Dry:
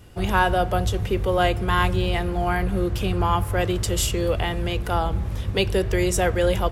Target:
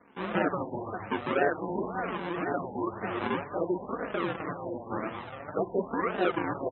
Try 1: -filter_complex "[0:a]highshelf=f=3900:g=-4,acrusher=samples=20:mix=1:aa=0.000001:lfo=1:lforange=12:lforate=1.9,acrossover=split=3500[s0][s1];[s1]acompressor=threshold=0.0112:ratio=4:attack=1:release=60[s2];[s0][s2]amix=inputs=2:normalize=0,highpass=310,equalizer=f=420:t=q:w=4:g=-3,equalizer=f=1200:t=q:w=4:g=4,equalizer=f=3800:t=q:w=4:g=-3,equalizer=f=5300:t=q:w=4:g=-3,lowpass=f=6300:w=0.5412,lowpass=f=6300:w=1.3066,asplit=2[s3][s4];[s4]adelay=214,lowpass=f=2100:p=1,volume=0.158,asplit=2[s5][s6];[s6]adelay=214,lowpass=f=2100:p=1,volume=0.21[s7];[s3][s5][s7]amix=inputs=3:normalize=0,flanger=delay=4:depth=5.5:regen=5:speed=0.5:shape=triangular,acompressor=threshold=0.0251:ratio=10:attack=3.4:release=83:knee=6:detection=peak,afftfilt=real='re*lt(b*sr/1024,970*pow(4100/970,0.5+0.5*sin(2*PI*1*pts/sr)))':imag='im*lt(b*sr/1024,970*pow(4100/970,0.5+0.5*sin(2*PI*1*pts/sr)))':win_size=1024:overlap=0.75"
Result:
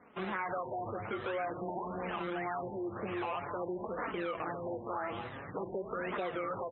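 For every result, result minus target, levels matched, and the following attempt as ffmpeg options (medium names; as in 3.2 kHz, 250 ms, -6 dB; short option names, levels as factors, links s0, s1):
compression: peak gain reduction +14 dB; decimation with a swept rate: distortion -8 dB
-filter_complex "[0:a]highshelf=f=3900:g=-4,acrusher=samples=20:mix=1:aa=0.000001:lfo=1:lforange=12:lforate=1.9,acrossover=split=3500[s0][s1];[s1]acompressor=threshold=0.0112:ratio=4:attack=1:release=60[s2];[s0][s2]amix=inputs=2:normalize=0,highpass=310,equalizer=f=420:t=q:w=4:g=-3,equalizer=f=1200:t=q:w=4:g=4,equalizer=f=3800:t=q:w=4:g=-3,equalizer=f=5300:t=q:w=4:g=-3,lowpass=f=6300:w=0.5412,lowpass=f=6300:w=1.3066,asplit=2[s3][s4];[s4]adelay=214,lowpass=f=2100:p=1,volume=0.158,asplit=2[s5][s6];[s6]adelay=214,lowpass=f=2100:p=1,volume=0.21[s7];[s3][s5][s7]amix=inputs=3:normalize=0,flanger=delay=4:depth=5.5:regen=5:speed=0.5:shape=triangular,afftfilt=real='re*lt(b*sr/1024,970*pow(4100/970,0.5+0.5*sin(2*PI*1*pts/sr)))':imag='im*lt(b*sr/1024,970*pow(4100/970,0.5+0.5*sin(2*PI*1*pts/sr)))':win_size=1024:overlap=0.75"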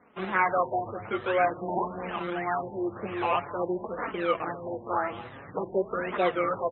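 decimation with a swept rate: distortion -8 dB
-filter_complex "[0:a]highshelf=f=3900:g=-4,acrusher=samples=55:mix=1:aa=0.000001:lfo=1:lforange=33:lforate=1.9,acrossover=split=3500[s0][s1];[s1]acompressor=threshold=0.0112:ratio=4:attack=1:release=60[s2];[s0][s2]amix=inputs=2:normalize=0,highpass=310,equalizer=f=420:t=q:w=4:g=-3,equalizer=f=1200:t=q:w=4:g=4,equalizer=f=3800:t=q:w=4:g=-3,equalizer=f=5300:t=q:w=4:g=-3,lowpass=f=6300:w=0.5412,lowpass=f=6300:w=1.3066,asplit=2[s3][s4];[s4]adelay=214,lowpass=f=2100:p=1,volume=0.158,asplit=2[s5][s6];[s6]adelay=214,lowpass=f=2100:p=1,volume=0.21[s7];[s3][s5][s7]amix=inputs=3:normalize=0,flanger=delay=4:depth=5.5:regen=5:speed=0.5:shape=triangular,afftfilt=real='re*lt(b*sr/1024,970*pow(4100/970,0.5+0.5*sin(2*PI*1*pts/sr)))':imag='im*lt(b*sr/1024,970*pow(4100/970,0.5+0.5*sin(2*PI*1*pts/sr)))':win_size=1024:overlap=0.75"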